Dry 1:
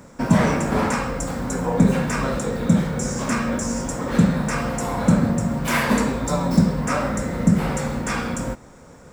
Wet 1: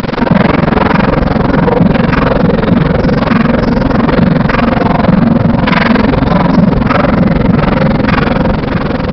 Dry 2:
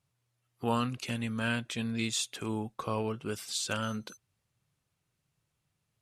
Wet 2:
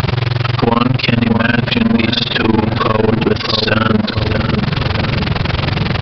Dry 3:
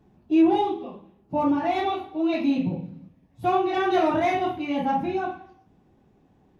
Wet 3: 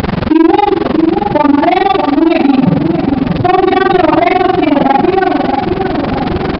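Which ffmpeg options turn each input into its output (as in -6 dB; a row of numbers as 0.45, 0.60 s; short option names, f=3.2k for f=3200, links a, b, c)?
-filter_complex "[0:a]aeval=exprs='val(0)+0.5*0.0355*sgn(val(0))':c=same,lowpass=f=4k:p=1,tremolo=f=22:d=1,asplit=2[a][b];[b]adelay=629,lowpass=f=910:p=1,volume=-7.5dB,asplit=2[c][d];[d]adelay=629,lowpass=f=910:p=1,volume=0.51,asplit=2[e][f];[f]adelay=629,lowpass=f=910:p=1,volume=0.51,asplit=2[g][h];[h]adelay=629,lowpass=f=910:p=1,volume=0.51,asplit=2[i][j];[j]adelay=629,lowpass=f=910:p=1,volume=0.51,asplit=2[k][l];[l]adelay=629,lowpass=f=910:p=1,volume=0.51[m];[a][c][e][g][i][k][m]amix=inputs=7:normalize=0,aresample=11025,asoftclip=type=tanh:threshold=-19dB,aresample=44100,acompressor=mode=upward:threshold=-28dB:ratio=2.5,alimiter=level_in=21dB:limit=-1dB:release=50:level=0:latency=1,volume=-1dB"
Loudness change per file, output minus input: +12.0, +19.5, +14.0 LU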